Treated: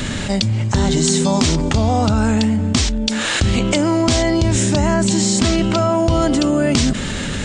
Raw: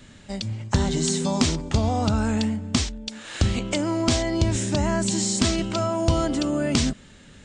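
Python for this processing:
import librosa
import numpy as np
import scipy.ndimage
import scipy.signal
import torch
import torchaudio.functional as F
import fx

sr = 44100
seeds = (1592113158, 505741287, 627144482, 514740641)

y = fx.high_shelf(x, sr, hz=4900.0, db=-6.0, at=(4.94, 6.22))
y = fx.env_flatten(y, sr, amount_pct=70)
y = y * 10.0 ** (2.5 / 20.0)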